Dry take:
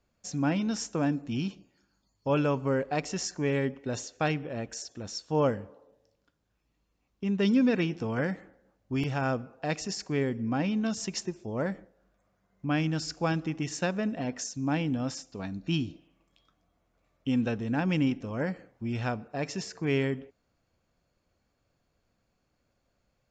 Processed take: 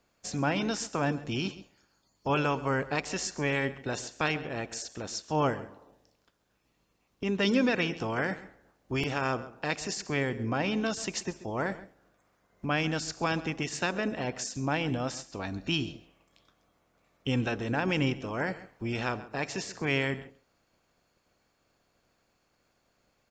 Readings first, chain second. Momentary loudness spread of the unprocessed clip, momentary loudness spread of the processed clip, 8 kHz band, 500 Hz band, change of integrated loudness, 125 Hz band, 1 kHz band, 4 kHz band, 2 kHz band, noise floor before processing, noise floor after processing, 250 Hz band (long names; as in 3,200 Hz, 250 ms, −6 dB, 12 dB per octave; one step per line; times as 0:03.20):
10 LU, 9 LU, +1.0 dB, −1.0 dB, −0.5 dB, −2.0 dB, +2.5 dB, +3.5 dB, +4.5 dB, −76 dBFS, −73 dBFS, −3.5 dB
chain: ceiling on every frequency bin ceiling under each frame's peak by 13 dB
single-tap delay 134 ms −19 dB
in parallel at −2 dB: downward compressor, threshold −38 dBFS, peak gain reduction 17 dB
on the sum: level −2.5 dB